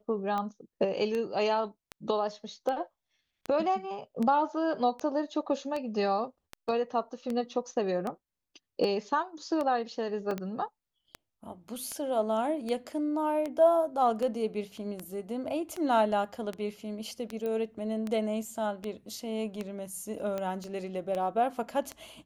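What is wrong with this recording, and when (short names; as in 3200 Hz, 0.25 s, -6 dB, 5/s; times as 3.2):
tick 78 rpm -21 dBFS
10.31 gap 2.5 ms
17.46 pop -24 dBFS
20.64 pop -31 dBFS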